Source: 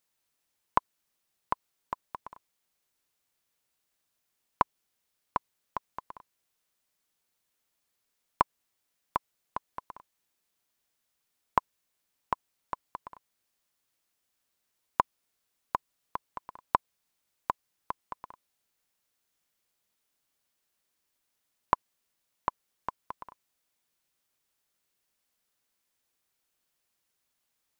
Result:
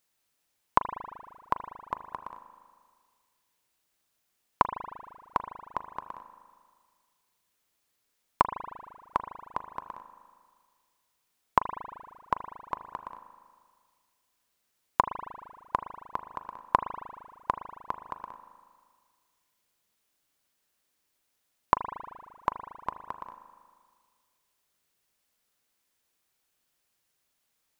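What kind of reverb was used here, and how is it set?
spring reverb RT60 1.8 s, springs 38 ms, chirp 40 ms, DRR 9 dB
level +2.5 dB

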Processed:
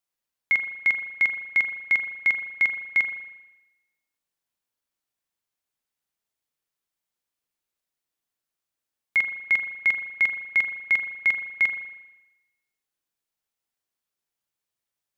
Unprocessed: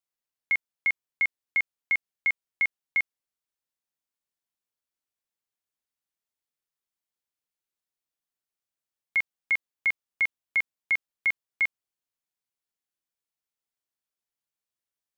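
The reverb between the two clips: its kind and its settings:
spring reverb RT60 1 s, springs 39 ms, chirp 55 ms, DRR 6.5 dB
level +3.5 dB

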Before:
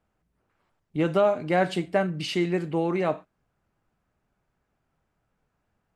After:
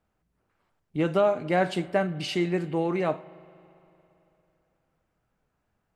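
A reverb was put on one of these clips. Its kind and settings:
spring reverb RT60 3.1 s, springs 40/56 ms, chirp 40 ms, DRR 19 dB
level −1 dB

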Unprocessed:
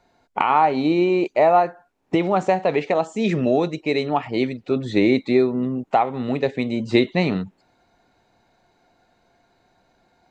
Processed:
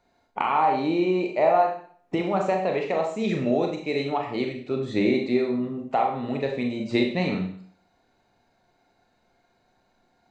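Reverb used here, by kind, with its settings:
four-comb reverb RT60 0.52 s, combs from 29 ms, DRR 2 dB
level −6.5 dB

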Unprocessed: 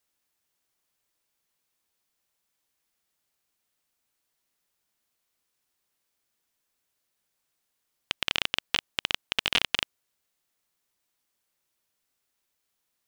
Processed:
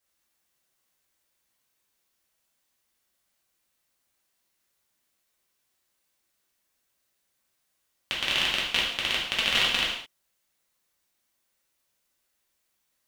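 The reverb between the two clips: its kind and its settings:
reverb whose tail is shaped and stops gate 240 ms falling, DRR −5.5 dB
level −3 dB

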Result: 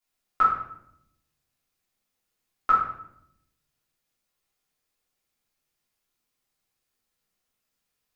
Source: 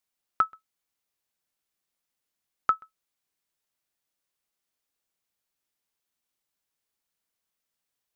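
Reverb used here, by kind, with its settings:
rectangular room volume 180 cubic metres, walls mixed, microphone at 3.2 metres
level −5.5 dB

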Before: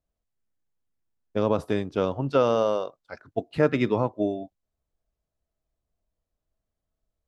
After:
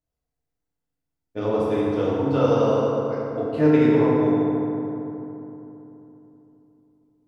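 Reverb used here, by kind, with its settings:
feedback delay network reverb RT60 3.3 s, low-frequency decay 1.2×, high-frequency decay 0.45×, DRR −9 dB
level −7.5 dB

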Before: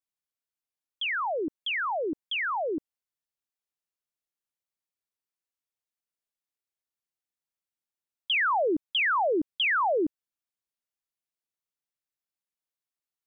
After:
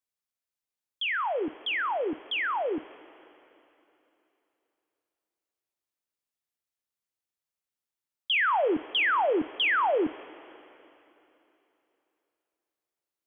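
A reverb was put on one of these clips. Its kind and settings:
coupled-rooms reverb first 0.21 s, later 3.2 s, from −18 dB, DRR 10.5 dB

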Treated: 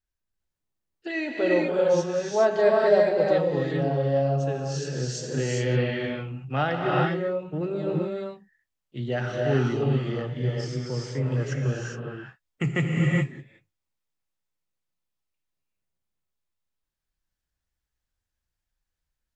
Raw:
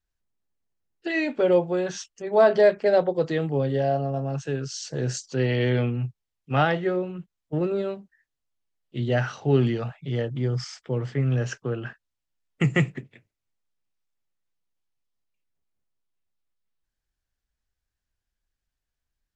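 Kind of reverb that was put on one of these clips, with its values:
reverb whose tail is shaped and stops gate 440 ms rising, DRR −2.5 dB
level −4.5 dB

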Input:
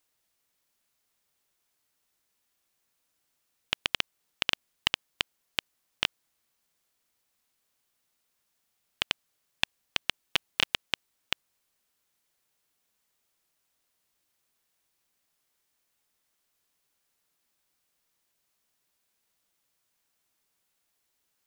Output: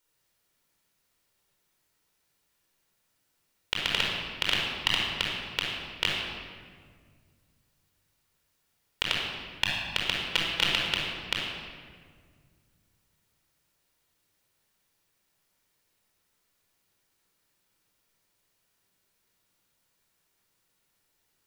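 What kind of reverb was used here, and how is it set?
rectangular room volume 2,700 cubic metres, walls mixed, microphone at 4.6 metres
level −2.5 dB

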